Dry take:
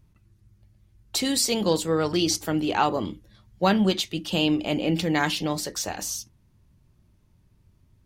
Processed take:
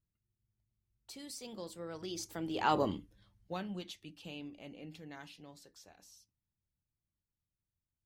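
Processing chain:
source passing by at 0:02.80, 17 m/s, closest 1.7 metres
in parallel at 0 dB: downward compressor, threshold −43 dBFS, peak gain reduction 20.5 dB
on the sum: level −5 dB

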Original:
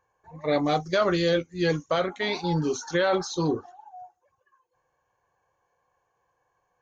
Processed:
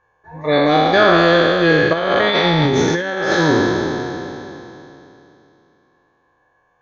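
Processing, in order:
peak hold with a decay on every bin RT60 2.98 s
hollow resonant body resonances 1,700/3,500 Hz, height 12 dB, ringing for 50 ms
0:01.93–0:03.33: compressor whose output falls as the input rises −22 dBFS, ratio −0.5
high-frequency loss of the air 140 metres
level +7 dB

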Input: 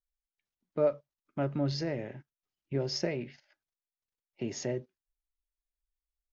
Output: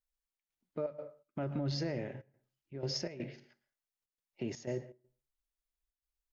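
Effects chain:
on a send at −16 dB: convolution reverb RT60 0.40 s, pre-delay 102 ms
on the sum: gate pattern "xxx.xxx.xx.xxxx" 122 BPM −12 dB
brickwall limiter −26 dBFS, peak gain reduction 9.5 dB
level −1 dB

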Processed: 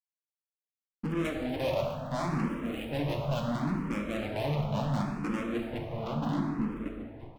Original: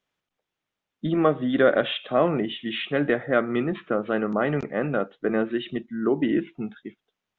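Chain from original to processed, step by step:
running median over 41 samples
in parallel at +2 dB: downward compressor, threshold −33 dBFS, peak gain reduction 15.5 dB
on the sum: slap from a distant wall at 250 metres, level −15 dB
slack as between gear wheels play −30.5 dBFS
phaser with its sweep stopped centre 1,600 Hz, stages 6
tube saturation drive 35 dB, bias 0.5
on a send: single-tap delay 1,136 ms −22.5 dB
on the sum: dense smooth reverb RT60 2.4 s, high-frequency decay 0.45×, pre-delay 0 ms, DRR 0.5 dB
frequency shifter mixed with the dry sound +0.71 Hz
level +7 dB

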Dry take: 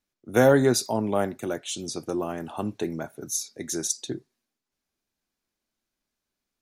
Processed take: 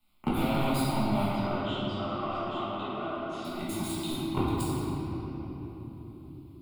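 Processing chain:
delay that plays each chunk backwards 533 ms, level −10 dB
leveller curve on the samples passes 5
phaser with its sweep stopped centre 1,700 Hz, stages 6
gate with flip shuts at −23 dBFS, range −28 dB
0:01.29–0:03.45: loudspeaker in its box 420–4,500 Hz, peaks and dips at 460 Hz +9 dB, 890 Hz −9 dB, 1,300 Hz +8 dB, 2,300 Hz −9 dB, 4,200 Hz −10 dB
rectangular room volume 140 cubic metres, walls hard, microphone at 1.4 metres
multiband upward and downward compressor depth 40%
level +5.5 dB

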